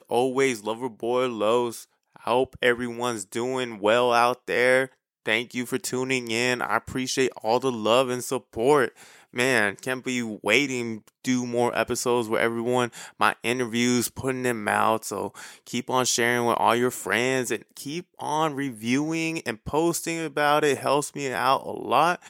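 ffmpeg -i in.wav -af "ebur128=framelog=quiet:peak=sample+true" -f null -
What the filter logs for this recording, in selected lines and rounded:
Integrated loudness:
  I:         -24.6 LUFS
  Threshold: -34.7 LUFS
Loudness range:
  LRA:         2.1 LU
  Threshold: -44.7 LUFS
  LRA low:   -25.8 LUFS
  LRA high:  -23.7 LUFS
Sample peak:
  Peak:       -3.4 dBFS
True peak:
  Peak:       -3.4 dBFS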